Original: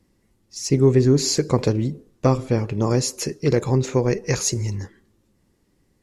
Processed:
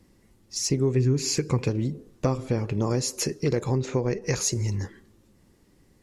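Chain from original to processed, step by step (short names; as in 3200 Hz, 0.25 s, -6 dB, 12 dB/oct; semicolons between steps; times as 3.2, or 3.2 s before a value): 0.96–1.69 thirty-one-band EQ 125 Hz +7 dB, 630 Hz -10 dB, 2500 Hz +9 dB, 4000 Hz -5 dB; compressor 2.5:1, threshold -31 dBFS, peak gain reduction 14 dB; 3.8–4.22 air absorption 51 m; gain +4.5 dB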